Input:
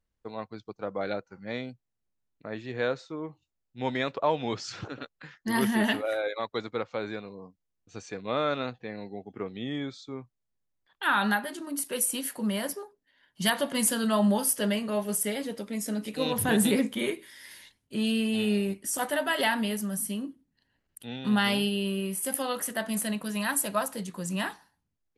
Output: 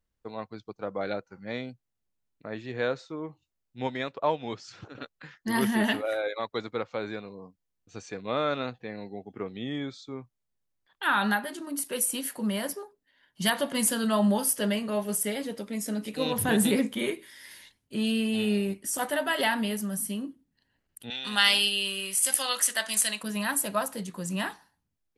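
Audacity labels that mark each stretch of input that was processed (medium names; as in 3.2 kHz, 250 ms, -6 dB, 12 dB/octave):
3.870000	4.950000	upward expansion, over -39 dBFS
21.100000	23.230000	frequency weighting ITU-R 468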